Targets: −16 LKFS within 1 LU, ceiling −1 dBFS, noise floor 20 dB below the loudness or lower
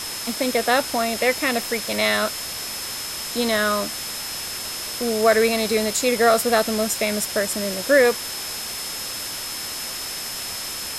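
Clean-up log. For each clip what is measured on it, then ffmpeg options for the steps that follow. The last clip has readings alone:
interfering tone 5,200 Hz; level of the tone −33 dBFS; background noise floor −31 dBFS; target noise floor −42 dBFS; integrated loudness −22.0 LKFS; sample peak −4.5 dBFS; target loudness −16.0 LKFS
→ -af "bandreject=frequency=5200:width=30"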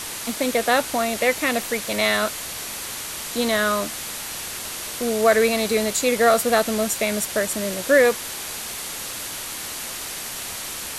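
interfering tone none found; background noise floor −32 dBFS; target noise floor −43 dBFS
→ -af "afftdn=noise_reduction=11:noise_floor=-32"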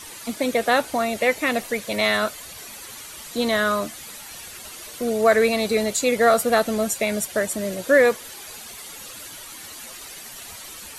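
background noise floor −39 dBFS; target noise floor −42 dBFS
→ -af "afftdn=noise_reduction=6:noise_floor=-39"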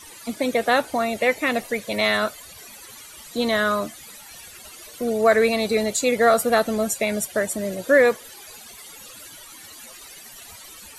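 background noise floor −43 dBFS; integrated loudness −21.5 LKFS; sample peak −5.0 dBFS; target loudness −16.0 LKFS
→ -af "volume=5.5dB,alimiter=limit=-1dB:level=0:latency=1"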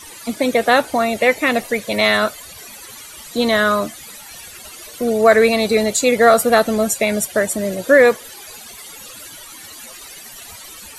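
integrated loudness −16.0 LKFS; sample peak −1.0 dBFS; background noise floor −38 dBFS

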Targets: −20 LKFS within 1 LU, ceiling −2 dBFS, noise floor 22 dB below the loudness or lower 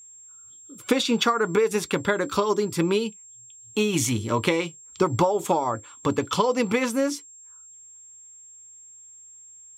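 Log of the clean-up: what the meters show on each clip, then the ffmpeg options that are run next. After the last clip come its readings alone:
interfering tone 7,500 Hz; level of the tone −45 dBFS; integrated loudness −24.5 LKFS; sample peak −8.0 dBFS; target loudness −20.0 LKFS
→ -af "bandreject=frequency=7500:width=30"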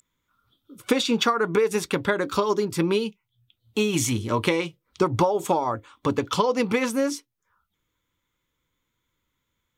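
interfering tone none found; integrated loudness −24.5 LKFS; sample peak −8.0 dBFS; target loudness −20.0 LKFS
→ -af "volume=4.5dB"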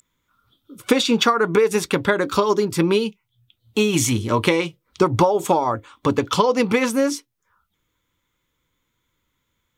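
integrated loudness −20.0 LKFS; sample peak −3.5 dBFS; background noise floor −74 dBFS

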